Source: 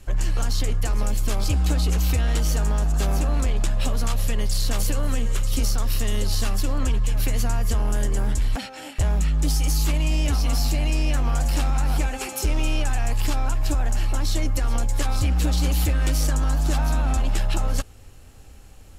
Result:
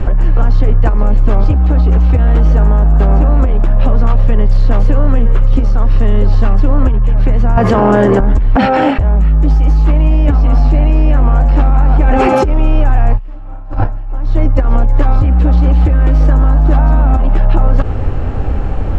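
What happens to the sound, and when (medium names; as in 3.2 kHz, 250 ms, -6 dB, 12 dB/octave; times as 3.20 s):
7.57–8.20 s: high-pass 200 Hz
13.15–13.67 s: reverb throw, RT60 1.9 s, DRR -7 dB
whole clip: low-pass 1.2 kHz 12 dB/octave; compressor with a negative ratio -26 dBFS, ratio -0.5; loudness maximiser +23 dB; trim -1 dB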